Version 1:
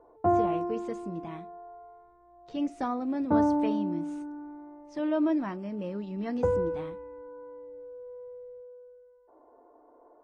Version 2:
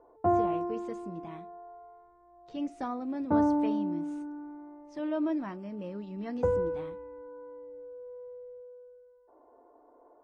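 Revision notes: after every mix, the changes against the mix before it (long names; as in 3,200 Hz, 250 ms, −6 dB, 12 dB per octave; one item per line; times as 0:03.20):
speech −4.0 dB
background: send off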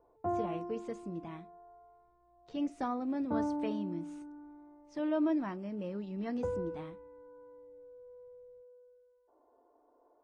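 background −8.5 dB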